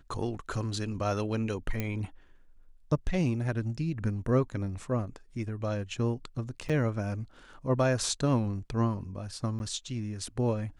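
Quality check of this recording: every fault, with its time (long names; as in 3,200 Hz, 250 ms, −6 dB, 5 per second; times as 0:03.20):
0:01.80: click −17 dBFS
0:06.69–0:06.70: drop-out 6.2 ms
0:09.59–0:09.60: drop-out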